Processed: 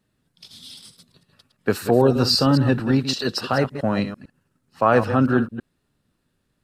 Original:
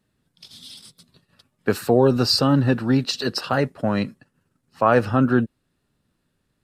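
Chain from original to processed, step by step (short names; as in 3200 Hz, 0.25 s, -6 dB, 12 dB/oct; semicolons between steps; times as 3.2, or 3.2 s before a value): reverse delay 0.112 s, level -10 dB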